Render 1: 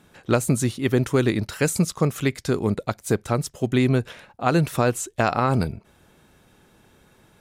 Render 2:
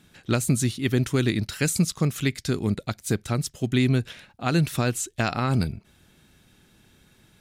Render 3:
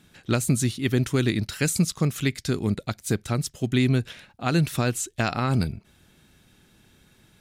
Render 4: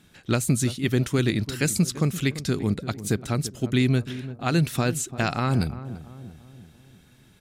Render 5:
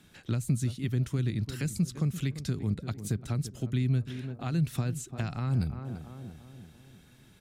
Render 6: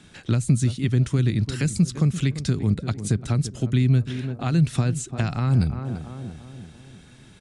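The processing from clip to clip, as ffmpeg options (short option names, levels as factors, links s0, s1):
-af "equalizer=f=500:t=o:w=1:g=-7,equalizer=f=1000:t=o:w=1:g=-7,equalizer=f=4000:t=o:w=1:g=3"
-af anull
-filter_complex "[0:a]asplit=2[s0][s1];[s1]adelay=341,lowpass=f=930:p=1,volume=0.224,asplit=2[s2][s3];[s3]adelay=341,lowpass=f=930:p=1,volume=0.53,asplit=2[s4][s5];[s5]adelay=341,lowpass=f=930:p=1,volume=0.53,asplit=2[s6][s7];[s7]adelay=341,lowpass=f=930:p=1,volume=0.53,asplit=2[s8][s9];[s9]adelay=341,lowpass=f=930:p=1,volume=0.53[s10];[s0][s2][s4][s6][s8][s10]amix=inputs=6:normalize=0"
-filter_complex "[0:a]acrossover=split=180[s0][s1];[s1]acompressor=threshold=0.0158:ratio=5[s2];[s0][s2]amix=inputs=2:normalize=0,volume=0.794"
-af "aresample=22050,aresample=44100,volume=2.66"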